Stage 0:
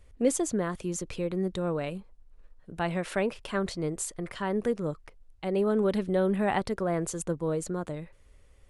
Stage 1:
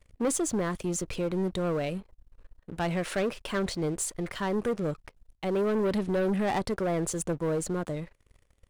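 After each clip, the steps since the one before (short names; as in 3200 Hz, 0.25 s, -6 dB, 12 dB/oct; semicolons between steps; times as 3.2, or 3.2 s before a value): sample leveller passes 3; gain -8 dB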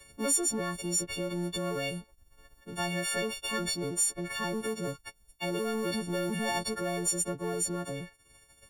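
frequency quantiser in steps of 4 st; three-band squash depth 40%; gain -5 dB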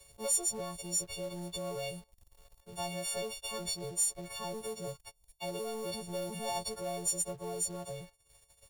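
fixed phaser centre 670 Hz, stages 4; in parallel at -6.5 dB: companded quantiser 4-bit; on the sum: gain -5.5 dB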